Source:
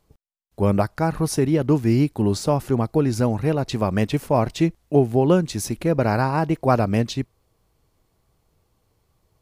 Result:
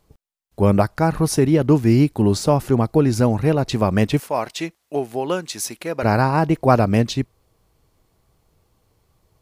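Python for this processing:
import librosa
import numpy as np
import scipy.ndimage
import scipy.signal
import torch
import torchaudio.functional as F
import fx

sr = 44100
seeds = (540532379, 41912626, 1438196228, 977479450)

y = fx.highpass(x, sr, hz=1100.0, slope=6, at=(4.2, 6.03))
y = F.gain(torch.from_numpy(y), 3.5).numpy()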